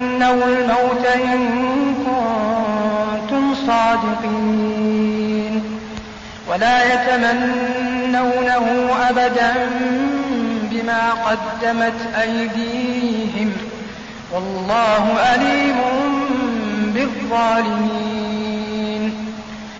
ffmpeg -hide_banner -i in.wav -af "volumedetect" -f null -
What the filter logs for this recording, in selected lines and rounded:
mean_volume: -17.9 dB
max_volume: -7.1 dB